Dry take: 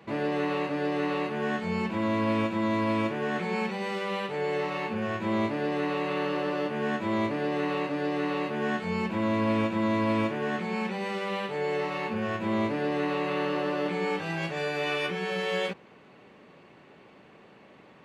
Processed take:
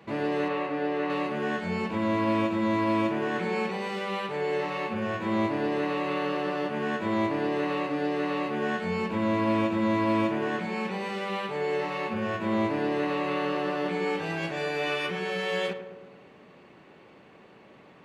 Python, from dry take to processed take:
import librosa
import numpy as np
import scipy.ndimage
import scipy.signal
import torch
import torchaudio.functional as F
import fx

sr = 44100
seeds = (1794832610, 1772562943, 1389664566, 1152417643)

y = fx.bass_treble(x, sr, bass_db=-5, treble_db=-10, at=(0.48, 1.1))
y = fx.echo_filtered(y, sr, ms=106, feedback_pct=62, hz=1500.0, wet_db=-9)